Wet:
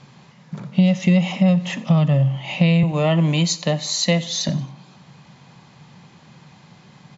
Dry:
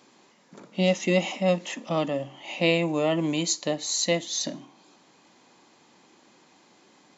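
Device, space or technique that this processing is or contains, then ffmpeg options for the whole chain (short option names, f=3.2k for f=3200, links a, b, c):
jukebox: -filter_complex "[0:a]asettb=1/sr,asplit=3[a][b][c];[a]atrim=end=2.834[d];[b]atrim=start=2.83:end=4.49,asetpts=PTS-STARTPTS,afade=t=in:d=0.004:c=qsin,afade=t=out:st=1.656:d=0.004:c=qsin,highpass=f=200:w=0.5412,highpass=f=200:w=1.3066[e];[c]atrim=start=4.486[f];[d][e]acrossfade=d=0.004:c1=hsin:c2=qsin[g];[g][f]acrossfade=d=0.004:c1=qsin:c2=hsin,lowpass=5k,lowshelf=f=210:t=q:w=3:g=12.5,aecho=1:1:90|180|270:0.0891|0.041|0.0189,acompressor=threshold=-21dB:ratio=5,volume=8dB"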